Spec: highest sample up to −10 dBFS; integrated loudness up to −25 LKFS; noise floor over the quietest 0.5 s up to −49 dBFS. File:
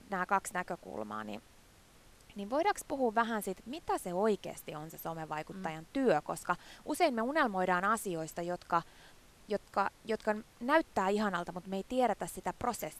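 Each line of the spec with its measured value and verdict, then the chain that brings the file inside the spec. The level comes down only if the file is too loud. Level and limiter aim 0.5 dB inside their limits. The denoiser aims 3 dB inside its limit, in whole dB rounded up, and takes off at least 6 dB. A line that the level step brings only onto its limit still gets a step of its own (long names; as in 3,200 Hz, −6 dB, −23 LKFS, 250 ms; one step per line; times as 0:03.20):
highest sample −13.0 dBFS: in spec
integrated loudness −34.5 LKFS: in spec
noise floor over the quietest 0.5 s −61 dBFS: in spec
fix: no processing needed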